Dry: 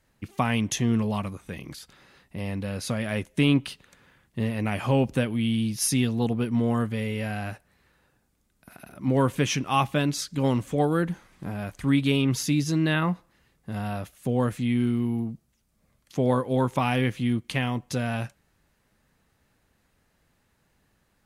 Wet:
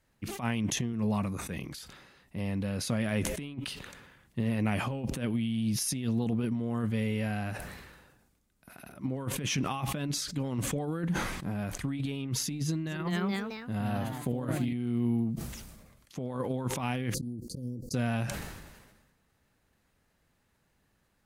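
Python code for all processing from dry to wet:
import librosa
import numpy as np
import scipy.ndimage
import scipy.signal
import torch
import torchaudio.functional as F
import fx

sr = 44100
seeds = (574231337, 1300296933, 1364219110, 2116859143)

y = fx.chain(x, sr, fx.highpass(hz=55.0, slope=12),
    fx.notch(hz=3100.0, q=5.4), at=(0.93, 1.51))
y = fx.chain(y, sr, fx.echo_pitch(ms=237, semitones=2, count=3, db_per_echo=-6.0),
    fx.notch(hz=5500.0, q=11.0), at=(12.63, 14.73))
y = fx.chain(y, sr, fx.auto_swell(attack_ms=239.0),
    fx.cheby1_bandstop(low_hz=530.0, high_hz=4500.0, order=5),
    fx.over_compress(threshold_db=-36.0, ratio=-1.0), at=(17.14, 17.94))
y = fx.over_compress(y, sr, threshold_db=-26.0, ratio=-0.5)
y = fx.dynamic_eq(y, sr, hz=180.0, q=0.82, threshold_db=-35.0, ratio=4.0, max_db=4)
y = fx.sustainer(y, sr, db_per_s=43.0)
y = y * 10.0 ** (-7.0 / 20.0)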